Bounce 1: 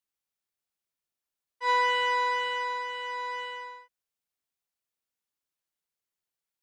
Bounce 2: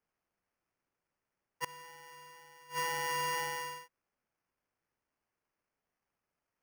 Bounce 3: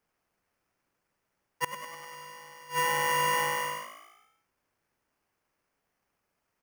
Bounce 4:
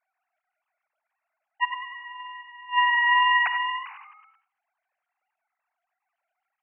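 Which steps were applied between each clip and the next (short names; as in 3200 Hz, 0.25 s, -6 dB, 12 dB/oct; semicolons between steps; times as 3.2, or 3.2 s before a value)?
flipped gate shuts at -24 dBFS, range -27 dB; sample-rate reducer 3800 Hz, jitter 0%
dynamic EQ 4900 Hz, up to -7 dB, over -58 dBFS, Q 2.5; on a send: frequency-shifting echo 0.1 s, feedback 55%, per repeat +55 Hz, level -10.5 dB; on the sum: gain +7.5 dB
sine-wave speech; non-linear reverb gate 0.11 s rising, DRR 11 dB; gain +6 dB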